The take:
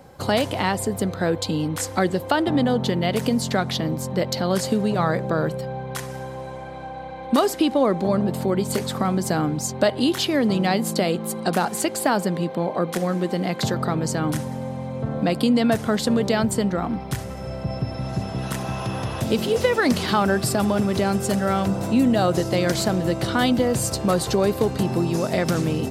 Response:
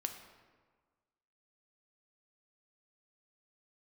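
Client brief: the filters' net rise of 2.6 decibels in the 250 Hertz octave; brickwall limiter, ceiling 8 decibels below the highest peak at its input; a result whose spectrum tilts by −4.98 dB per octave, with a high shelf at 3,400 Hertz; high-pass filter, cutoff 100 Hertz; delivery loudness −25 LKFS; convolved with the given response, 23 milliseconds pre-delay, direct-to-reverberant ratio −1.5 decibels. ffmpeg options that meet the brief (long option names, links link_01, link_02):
-filter_complex "[0:a]highpass=100,equalizer=frequency=250:width_type=o:gain=3.5,highshelf=frequency=3400:gain=4,alimiter=limit=-10.5dB:level=0:latency=1,asplit=2[link_01][link_02];[1:a]atrim=start_sample=2205,adelay=23[link_03];[link_02][link_03]afir=irnorm=-1:irlink=0,volume=1.5dB[link_04];[link_01][link_04]amix=inputs=2:normalize=0,volume=-6.5dB"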